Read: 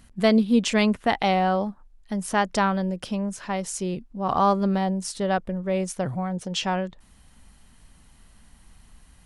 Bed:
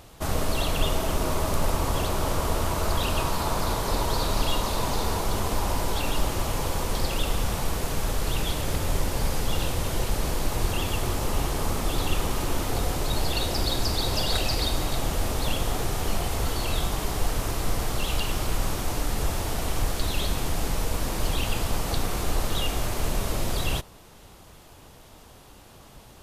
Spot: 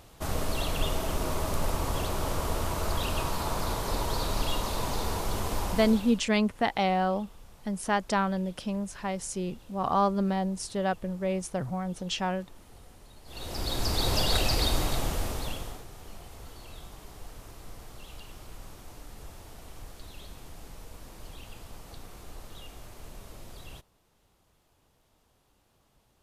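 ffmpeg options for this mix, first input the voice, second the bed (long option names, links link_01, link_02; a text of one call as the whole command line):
ffmpeg -i stem1.wav -i stem2.wav -filter_complex "[0:a]adelay=5550,volume=-4.5dB[link_01];[1:a]volume=22dB,afade=type=out:start_time=5.62:duration=0.6:silence=0.0749894,afade=type=in:start_time=13.25:duration=0.84:silence=0.0473151,afade=type=out:start_time=14.76:duration=1.08:silence=0.11885[link_02];[link_01][link_02]amix=inputs=2:normalize=0" out.wav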